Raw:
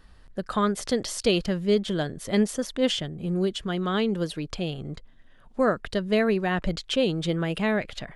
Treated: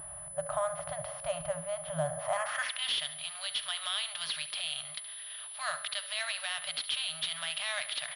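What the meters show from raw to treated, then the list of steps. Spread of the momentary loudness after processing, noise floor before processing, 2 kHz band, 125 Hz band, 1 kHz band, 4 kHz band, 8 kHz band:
6 LU, -52 dBFS, -3.5 dB, -17.0 dB, -6.0 dB, 0.0 dB, +2.0 dB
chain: per-bin compression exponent 0.6; HPF 40 Hz; de-hum 94.24 Hz, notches 23; FFT band-reject 170–550 Hz; low shelf 140 Hz +4 dB; band-pass sweep 350 Hz -> 3900 Hz, 2–2.88; limiter -28.5 dBFS, peak gain reduction 10.5 dB; feedback echo 70 ms, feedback 53%, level -15 dB; pulse-width modulation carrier 10000 Hz; gain +7 dB

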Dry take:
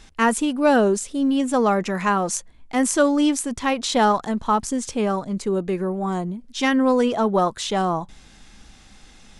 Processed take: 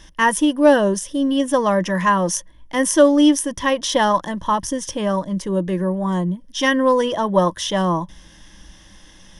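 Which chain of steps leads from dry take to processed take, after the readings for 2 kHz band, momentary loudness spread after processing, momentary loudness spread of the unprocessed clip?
+3.5 dB, 9 LU, 8 LU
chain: ripple EQ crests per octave 1.2, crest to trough 12 dB; gain +1 dB

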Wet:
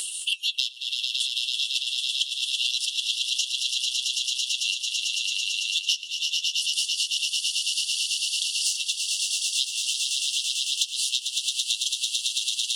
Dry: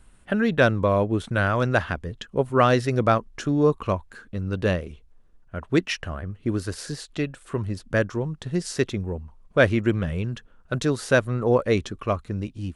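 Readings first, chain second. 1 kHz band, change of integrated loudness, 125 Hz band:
under -40 dB, 0.0 dB, under -40 dB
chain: self-modulated delay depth 0.053 ms; harmonic-percussive split percussive +7 dB; brick-wall FIR high-pass 2700 Hz; reverse; upward compressor, threshold -48 dBFS; reverse; flange 0.75 Hz, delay 7.3 ms, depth 7.2 ms, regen +60%; on a send: swelling echo 0.111 s, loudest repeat 8, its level -7 dB; on the sum: transient shaper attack +2 dB, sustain -6 dB; three-band squash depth 100%; gain +8.5 dB

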